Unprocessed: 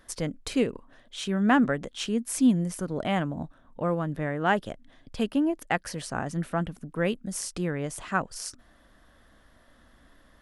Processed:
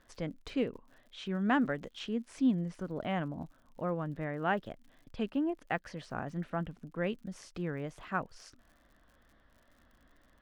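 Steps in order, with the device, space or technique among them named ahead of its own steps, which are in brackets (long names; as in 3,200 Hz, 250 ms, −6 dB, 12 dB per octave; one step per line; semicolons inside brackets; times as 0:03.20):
0:01.36–0:01.99: bass and treble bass −1 dB, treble +9 dB
lo-fi chain (low-pass filter 3,500 Hz 12 dB per octave; tape wow and flutter; surface crackle 74 per second −46 dBFS)
level −7 dB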